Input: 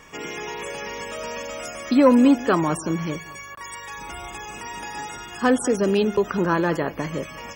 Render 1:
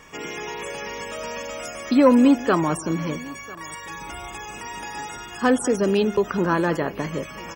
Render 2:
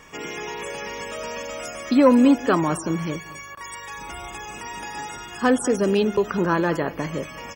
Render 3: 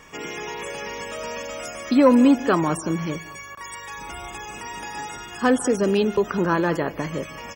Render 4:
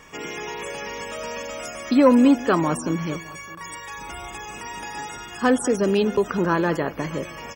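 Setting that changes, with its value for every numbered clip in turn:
delay, time: 997 ms, 233 ms, 151 ms, 614 ms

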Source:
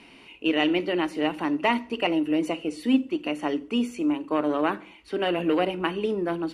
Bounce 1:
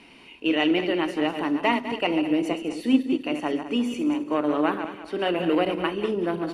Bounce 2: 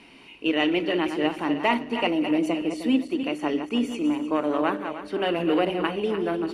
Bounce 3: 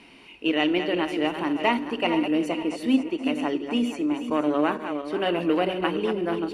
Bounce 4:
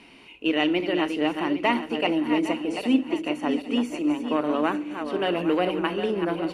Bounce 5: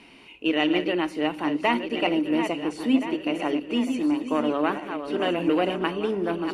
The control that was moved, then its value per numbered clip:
backward echo that repeats, time: 101 ms, 154 ms, 239 ms, 403 ms, 686 ms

